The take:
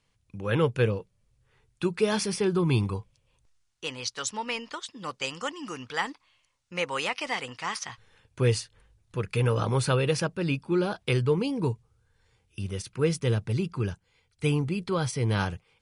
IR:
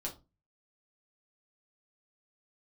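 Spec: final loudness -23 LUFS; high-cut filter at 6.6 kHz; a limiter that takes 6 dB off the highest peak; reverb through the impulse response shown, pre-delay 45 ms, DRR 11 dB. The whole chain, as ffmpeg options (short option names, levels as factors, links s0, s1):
-filter_complex "[0:a]lowpass=6600,alimiter=limit=0.126:level=0:latency=1,asplit=2[s0][s1];[1:a]atrim=start_sample=2205,adelay=45[s2];[s1][s2]afir=irnorm=-1:irlink=0,volume=0.282[s3];[s0][s3]amix=inputs=2:normalize=0,volume=2.24"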